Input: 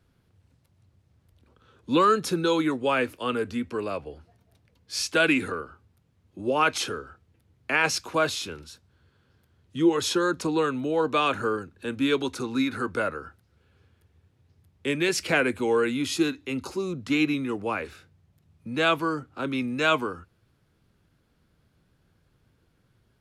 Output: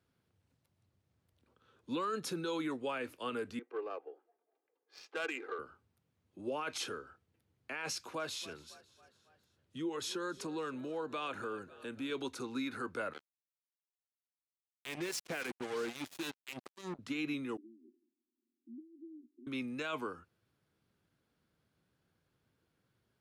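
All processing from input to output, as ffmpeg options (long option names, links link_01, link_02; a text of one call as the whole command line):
ffmpeg -i in.wav -filter_complex "[0:a]asettb=1/sr,asplit=3[link_01][link_02][link_03];[link_01]atrim=end=3.594[link_04];[link_02]atrim=start=3.59:end=5.59,asetpts=PTS-STARTPTS,afade=type=in:duration=0.004:curve=qsin,afade=type=out:start_time=1.996:duration=0.004:curve=qsin,highpass=frequency=380:width=0.5412,highpass=frequency=380:width=1.3066,aecho=1:1:2.5:0.5,atrim=end_sample=88200,adynamicsmooth=sensitivity=1:basefreq=1200[link_05];[link_03]atrim=start=5.586[link_06];[link_04][link_05]acrossfade=duration=0.004:curve1=hsin:curve2=qsin[link_07];[link_07][link_06]acrossfade=duration=0.004:curve1=qsin:curve2=hsin,asettb=1/sr,asplit=3[link_08][link_09][link_10];[link_08]atrim=end=7.924[link_11];[link_09]atrim=start=7.92:end=12.1,asetpts=PTS-STARTPTS,afade=type=in:duration=0.004:curve=qsin,afade=type=out:start_time=4.176:duration=0.004:curve=qsin,asplit=5[link_12][link_13][link_14][link_15][link_16];[link_13]adelay=276,afreqshift=33,volume=-23dB[link_17];[link_14]adelay=552,afreqshift=66,volume=-28.2dB[link_18];[link_15]adelay=828,afreqshift=99,volume=-33.4dB[link_19];[link_16]adelay=1104,afreqshift=132,volume=-38.6dB[link_20];[link_12][link_17][link_18][link_19][link_20]amix=inputs=5:normalize=0,atrim=end_sample=184338,acompressor=threshold=-29dB:ratio=2:attack=3.2:release=140:knee=1:detection=peak[link_21];[link_10]atrim=start=12.096[link_22];[link_11][link_21]acrossfade=duration=0.004:curve1=hsin:curve2=qsin[link_23];[link_23][link_22]acrossfade=duration=0.004:curve1=qsin:curve2=hsin,asettb=1/sr,asplit=3[link_24][link_25][link_26];[link_24]atrim=end=13.134[link_27];[link_25]atrim=start=13.13:end=16.99,asetpts=PTS-STARTPTS,afade=type=in:duration=0.004:curve=qsin,afade=type=out:start_time=3.856:duration=0.004:curve=qsin,acrossover=split=1500[link_28][link_29];[link_28]aeval=exprs='val(0)*(1-0.7/2+0.7/2*cos(2*PI*3.7*n/s))':channel_layout=same[link_30];[link_29]aeval=exprs='val(0)*(1-0.7/2-0.7/2*cos(2*PI*3.7*n/s))':channel_layout=same[link_31];[link_30][link_31]amix=inputs=2:normalize=0,acrusher=bits=4:mix=0:aa=0.5[link_32];[link_26]atrim=start=16.986[link_33];[link_27][link_32]acrossfade=duration=0.004:curve1=hsin:curve2=qsin[link_34];[link_34][link_33]acrossfade=duration=0.004:curve1=qsin:curve2=hsin,asettb=1/sr,asplit=3[link_35][link_36][link_37];[link_35]atrim=end=17.574[link_38];[link_36]atrim=start=17.57:end=19.47,asetpts=PTS-STARTPTS,afade=type=in:duration=0.004:curve=qsin,afade=type=out:start_time=1.896:duration=0.004:curve=qsin,acompressor=threshold=-34dB:ratio=6:attack=3.2:release=140:knee=1:detection=peak,asuperpass=centerf=290:order=20:qfactor=1.8[link_39];[link_37]atrim=start=19.466[link_40];[link_38][link_39]acrossfade=duration=0.004:curve1=hsin:curve2=qsin[link_41];[link_41][link_40]acrossfade=duration=0.004:curve1=qsin:curve2=hsin,highpass=frequency=180:poles=1,alimiter=limit=-20dB:level=0:latency=1:release=32,volume=-9dB" out.wav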